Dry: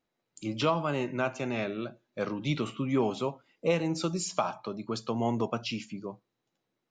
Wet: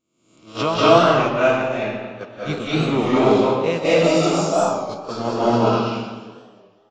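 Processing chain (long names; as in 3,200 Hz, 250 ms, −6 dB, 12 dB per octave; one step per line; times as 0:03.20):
peak hold with a rise ahead of every peak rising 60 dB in 0.75 s
in parallel at −1 dB: downward compressor 6 to 1, threshold −36 dBFS, peak gain reduction 15 dB
on the sum: echo with shifted repeats 180 ms, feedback 48%, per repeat +110 Hz, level −6.5 dB
noise gate −24 dBFS, range −22 dB
0:04.21–0:04.85: parametric band 2,200 Hz −12 dB 2.1 octaves
convolution reverb RT60 1.3 s, pre-delay 158 ms, DRR −8.5 dB
wow of a warped record 33 1/3 rpm, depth 100 cents
level +1.5 dB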